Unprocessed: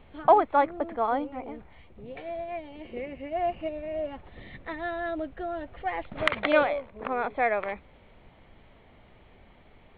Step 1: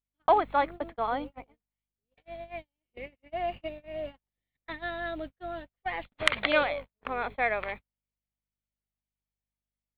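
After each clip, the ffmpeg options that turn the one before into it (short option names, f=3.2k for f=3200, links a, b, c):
-af "crystalizer=i=6:c=0,aeval=exprs='val(0)+0.00708*(sin(2*PI*50*n/s)+sin(2*PI*2*50*n/s)/2+sin(2*PI*3*50*n/s)/3+sin(2*PI*4*50*n/s)/4+sin(2*PI*5*50*n/s)/5)':c=same,agate=range=-45dB:threshold=-32dB:ratio=16:detection=peak,volume=-5.5dB"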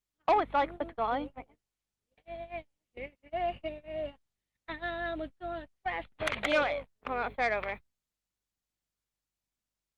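-af "asoftclip=type=tanh:threshold=-18.5dB" -ar 48000 -c:a libopus -b:a 24k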